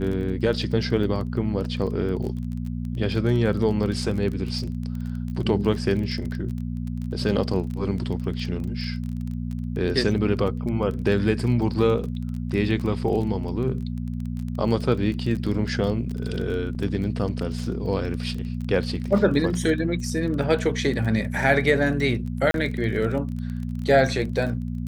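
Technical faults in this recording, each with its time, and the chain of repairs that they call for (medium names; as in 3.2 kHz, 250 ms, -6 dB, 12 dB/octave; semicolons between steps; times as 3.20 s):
crackle 24 per s -30 dBFS
hum 60 Hz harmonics 4 -29 dBFS
16.75 s: dropout 4.1 ms
22.51–22.54 s: dropout 32 ms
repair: de-click; de-hum 60 Hz, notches 4; interpolate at 16.75 s, 4.1 ms; interpolate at 22.51 s, 32 ms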